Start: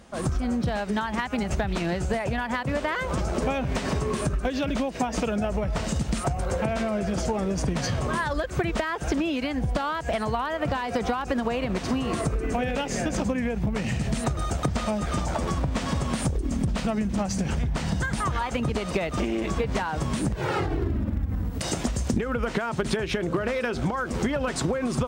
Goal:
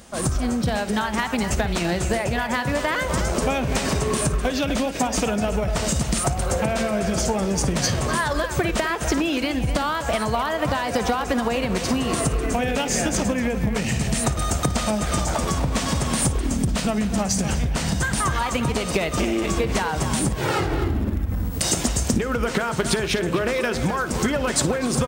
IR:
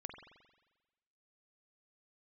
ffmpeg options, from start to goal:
-filter_complex "[0:a]asplit=2[a][b];[b]adelay=250,highpass=300,lowpass=3.4k,asoftclip=type=hard:threshold=-23.5dB,volume=-8dB[c];[a][c]amix=inputs=2:normalize=0,asplit=2[d][e];[1:a]atrim=start_sample=2205,adelay=56[f];[e][f]afir=irnorm=-1:irlink=0,volume=-11dB[g];[d][g]amix=inputs=2:normalize=0,crystalizer=i=2:c=0,volume=3dB"

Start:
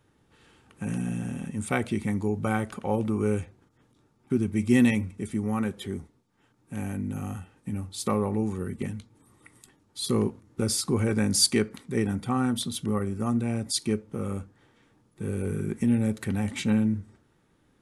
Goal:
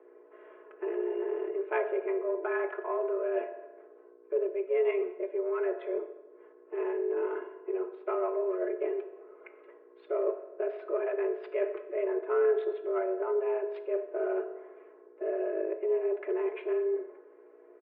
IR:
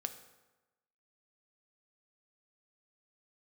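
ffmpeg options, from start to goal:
-filter_complex "[0:a]aecho=1:1:4.6:0.88,areverse,acompressor=threshold=-33dB:ratio=4,areverse,aeval=exprs='val(0)+0.00316*(sin(2*PI*60*n/s)+sin(2*PI*2*60*n/s)/2+sin(2*PI*3*60*n/s)/3+sin(2*PI*4*60*n/s)/4+sin(2*PI*5*60*n/s)/5)':c=same,adynamicsmooth=sensitivity=3.5:basefreq=1.5k[a];[1:a]atrim=start_sample=2205[b];[a][b]afir=irnorm=-1:irlink=0,highpass=f=190:t=q:w=0.5412,highpass=f=190:t=q:w=1.307,lowpass=f=2.4k:t=q:w=0.5176,lowpass=f=2.4k:t=q:w=0.7071,lowpass=f=2.4k:t=q:w=1.932,afreqshift=180,volume=6dB"

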